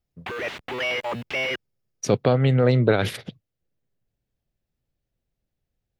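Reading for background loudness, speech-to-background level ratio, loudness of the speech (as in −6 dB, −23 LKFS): −28.0 LKFS, 7.5 dB, −20.5 LKFS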